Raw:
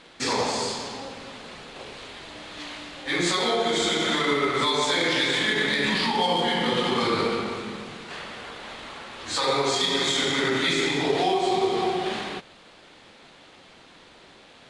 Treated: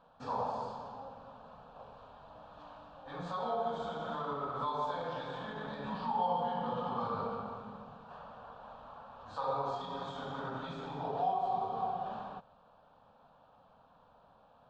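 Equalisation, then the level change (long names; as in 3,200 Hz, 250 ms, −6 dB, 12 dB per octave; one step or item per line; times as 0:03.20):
low-pass filter 1,300 Hz 12 dB per octave
low-shelf EQ 240 Hz −4 dB
phaser with its sweep stopped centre 850 Hz, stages 4
−5.0 dB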